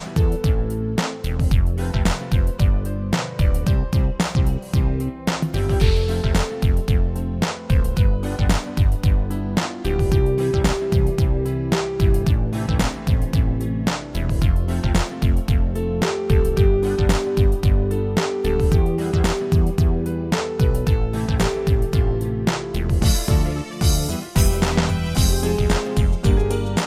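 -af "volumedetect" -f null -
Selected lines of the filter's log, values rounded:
mean_volume: -18.4 dB
max_volume: -3.7 dB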